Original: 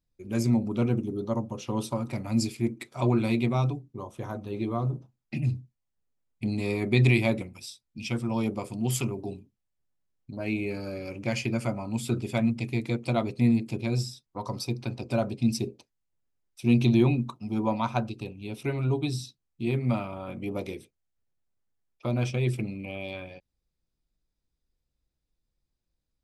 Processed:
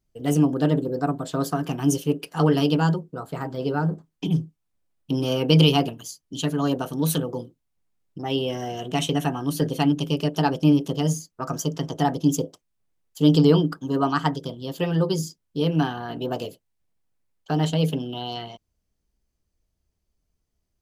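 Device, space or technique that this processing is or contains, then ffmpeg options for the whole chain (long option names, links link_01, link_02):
nightcore: -af "asetrate=55566,aresample=44100,volume=5dB"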